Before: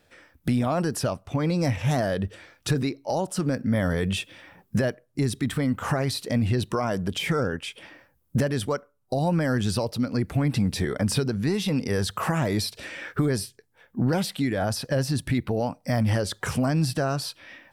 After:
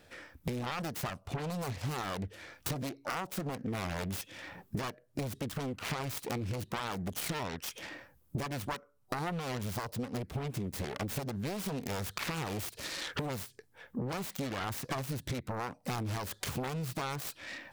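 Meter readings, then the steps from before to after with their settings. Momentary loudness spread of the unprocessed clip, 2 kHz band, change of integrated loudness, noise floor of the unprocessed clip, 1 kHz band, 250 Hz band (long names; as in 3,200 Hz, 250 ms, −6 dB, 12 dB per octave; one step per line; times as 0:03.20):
7 LU, −8.0 dB, −11.5 dB, −66 dBFS, −6.5 dB, −13.5 dB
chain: phase distortion by the signal itself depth 0.94 ms
downward compressor 5 to 1, threshold −38 dBFS, peak gain reduction 16.5 dB
level +3 dB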